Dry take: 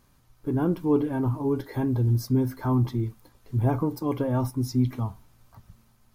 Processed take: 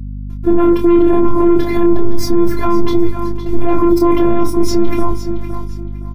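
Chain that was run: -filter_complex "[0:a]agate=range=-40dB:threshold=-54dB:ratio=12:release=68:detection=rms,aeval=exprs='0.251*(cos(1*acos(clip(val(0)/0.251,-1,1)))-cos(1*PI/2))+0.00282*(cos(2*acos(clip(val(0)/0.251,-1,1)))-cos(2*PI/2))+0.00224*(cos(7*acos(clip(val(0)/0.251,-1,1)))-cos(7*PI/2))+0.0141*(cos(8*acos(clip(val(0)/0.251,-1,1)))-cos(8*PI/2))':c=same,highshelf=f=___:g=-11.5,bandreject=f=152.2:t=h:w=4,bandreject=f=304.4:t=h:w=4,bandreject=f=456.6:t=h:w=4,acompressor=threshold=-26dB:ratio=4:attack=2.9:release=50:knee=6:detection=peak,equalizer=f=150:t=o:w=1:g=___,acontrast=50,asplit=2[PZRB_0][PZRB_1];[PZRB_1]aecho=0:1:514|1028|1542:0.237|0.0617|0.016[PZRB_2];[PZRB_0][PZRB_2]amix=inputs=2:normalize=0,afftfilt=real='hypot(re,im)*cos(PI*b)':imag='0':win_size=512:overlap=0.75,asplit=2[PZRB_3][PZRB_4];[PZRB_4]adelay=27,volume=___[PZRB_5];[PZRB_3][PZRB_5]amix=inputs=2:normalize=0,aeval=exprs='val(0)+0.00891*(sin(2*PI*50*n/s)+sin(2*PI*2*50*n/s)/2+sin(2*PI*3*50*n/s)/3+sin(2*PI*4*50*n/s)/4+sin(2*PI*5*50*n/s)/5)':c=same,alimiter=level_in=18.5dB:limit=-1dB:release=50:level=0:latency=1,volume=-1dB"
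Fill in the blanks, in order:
5700, 11.5, -5dB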